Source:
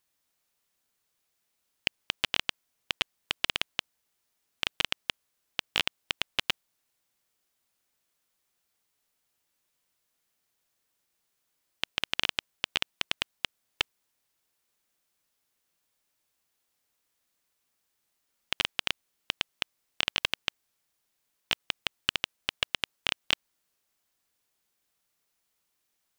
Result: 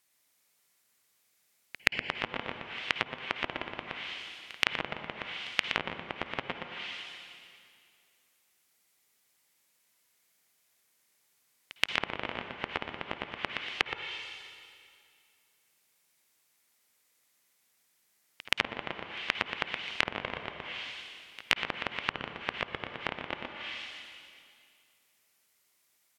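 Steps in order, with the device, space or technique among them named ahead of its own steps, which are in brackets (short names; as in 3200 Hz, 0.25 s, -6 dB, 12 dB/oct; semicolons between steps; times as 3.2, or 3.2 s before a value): PA in a hall (HPF 120 Hz 6 dB/oct; bell 2100 Hz +5.5 dB 0.38 oct; echo 0.12 s -5 dB; reverb RT60 2.3 s, pre-delay 50 ms, DRR 5 dB); treble ducked by the level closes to 1000 Hz, closed at -29 dBFS; high shelf 5400 Hz +5 dB; pre-echo 0.125 s -21 dB; gain +2 dB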